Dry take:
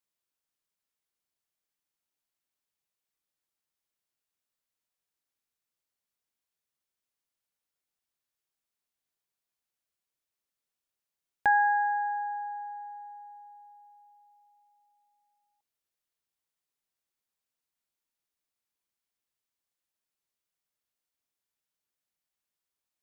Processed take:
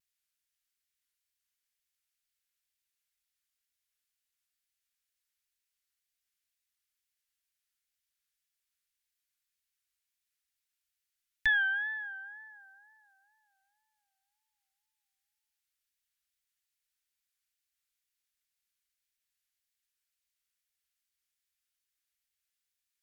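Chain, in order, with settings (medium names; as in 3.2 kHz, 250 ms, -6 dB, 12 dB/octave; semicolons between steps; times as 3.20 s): inverse Chebyshev band-stop 160–710 Hz, stop band 50 dB; wow and flutter 100 cents; Chebyshev shaper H 2 -14 dB, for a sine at -23 dBFS; trim +3 dB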